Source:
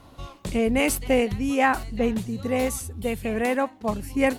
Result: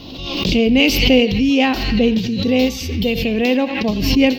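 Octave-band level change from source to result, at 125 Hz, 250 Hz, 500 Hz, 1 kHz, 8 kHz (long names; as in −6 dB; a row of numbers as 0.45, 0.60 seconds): +10.0, +10.5, +6.5, +0.5, +1.5 decibels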